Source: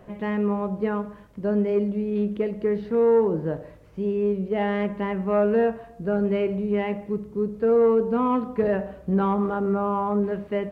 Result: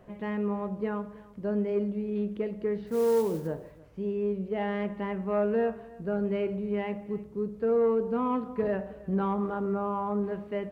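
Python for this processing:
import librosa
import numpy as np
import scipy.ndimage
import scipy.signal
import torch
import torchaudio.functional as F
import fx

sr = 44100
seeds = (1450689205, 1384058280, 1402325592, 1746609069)

p1 = fx.mod_noise(x, sr, seeds[0], snr_db=23, at=(2.86, 3.46), fade=0.02)
p2 = p1 + fx.echo_single(p1, sr, ms=313, db=-21.0, dry=0)
y = p2 * 10.0 ** (-6.0 / 20.0)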